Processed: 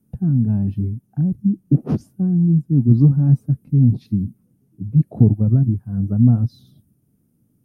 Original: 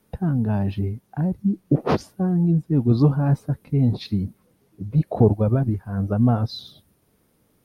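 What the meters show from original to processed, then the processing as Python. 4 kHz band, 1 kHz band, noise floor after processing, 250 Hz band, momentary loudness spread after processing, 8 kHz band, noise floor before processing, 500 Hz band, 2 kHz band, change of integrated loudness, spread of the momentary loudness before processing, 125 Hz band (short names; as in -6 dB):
under -15 dB, under -10 dB, -64 dBFS, +3.5 dB, 10 LU, n/a, -65 dBFS, -8.5 dB, under -15 dB, +4.0 dB, 9 LU, +5.5 dB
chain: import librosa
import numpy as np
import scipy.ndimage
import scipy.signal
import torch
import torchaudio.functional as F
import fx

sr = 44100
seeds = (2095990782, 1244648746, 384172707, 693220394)

y = fx.graphic_eq(x, sr, hz=(125, 250, 500, 1000, 2000, 4000), db=(10, 8, -7, -9, -9, -12))
y = y * 10.0 ** (-4.5 / 20.0)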